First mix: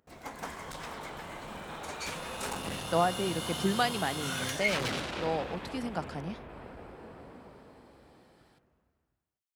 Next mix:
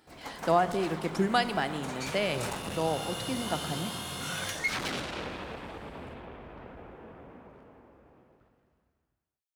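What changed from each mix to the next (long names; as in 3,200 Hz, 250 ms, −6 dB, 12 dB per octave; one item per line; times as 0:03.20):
speech: entry −2.45 s
reverb: on, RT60 2.1 s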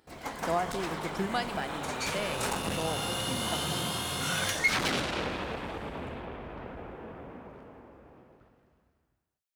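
speech −5.5 dB
background +4.5 dB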